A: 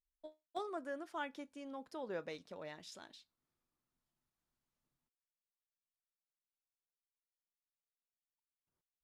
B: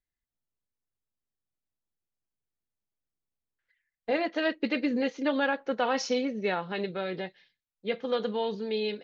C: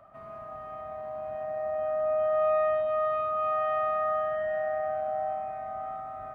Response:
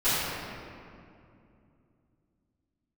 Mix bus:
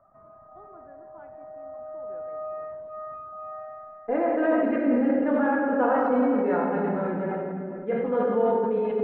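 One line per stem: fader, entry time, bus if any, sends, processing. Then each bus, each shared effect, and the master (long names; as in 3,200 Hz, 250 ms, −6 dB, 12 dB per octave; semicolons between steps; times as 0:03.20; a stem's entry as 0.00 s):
−10.0 dB, 0.00 s, send −21.5 dB, no processing
−1.5 dB, 0.00 s, send −10.5 dB, no processing
−6.5 dB, 0.00 s, no send, reverb reduction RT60 0.94 s; automatic ducking −17 dB, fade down 0.45 s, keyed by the second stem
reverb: on, RT60 2.5 s, pre-delay 3 ms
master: low-pass filter 1,500 Hz 24 dB per octave; level that may fall only so fast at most 20 dB per second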